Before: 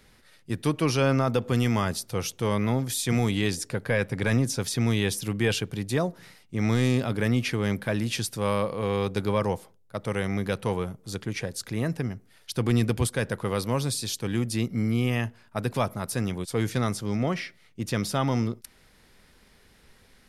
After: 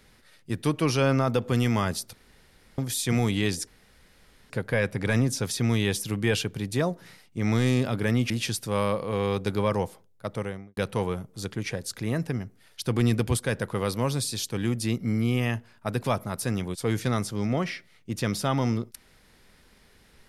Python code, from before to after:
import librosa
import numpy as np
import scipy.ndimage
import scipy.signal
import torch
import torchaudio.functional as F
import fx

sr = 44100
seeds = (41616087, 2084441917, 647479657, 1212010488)

y = fx.studio_fade_out(x, sr, start_s=9.96, length_s=0.51)
y = fx.edit(y, sr, fx.room_tone_fill(start_s=2.13, length_s=0.65),
    fx.insert_room_tone(at_s=3.67, length_s=0.83),
    fx.cut(start_s=7.47, length_s=0.53), tone=tone)